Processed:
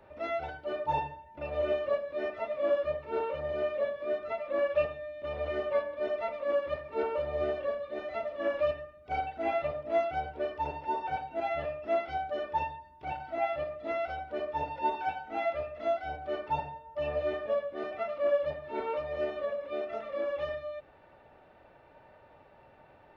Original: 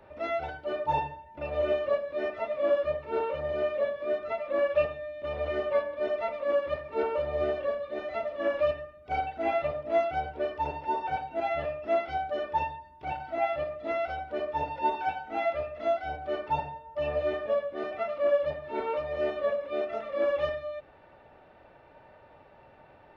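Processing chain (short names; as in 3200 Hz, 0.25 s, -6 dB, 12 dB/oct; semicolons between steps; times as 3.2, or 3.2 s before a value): 19.24–20.5 compressor, threshold -27 dBFS, peak gain reduction 4.5 dB; gain -2.5 dB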